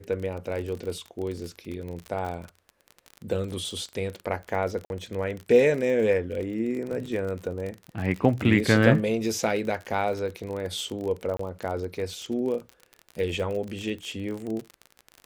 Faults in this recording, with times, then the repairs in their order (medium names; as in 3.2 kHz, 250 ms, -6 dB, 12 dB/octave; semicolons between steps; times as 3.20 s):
crackle 35 per s -31 dBFS
4.85–4.90 s: dropout 51 ms
11.37–11.39 s: dropout 24 ms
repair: de-click; interpolate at 4.85 s, 51 ms; interpolate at 11.37 s, 24 ms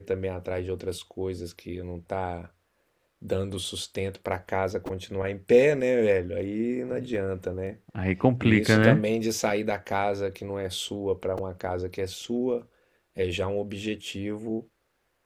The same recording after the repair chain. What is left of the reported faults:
nothing left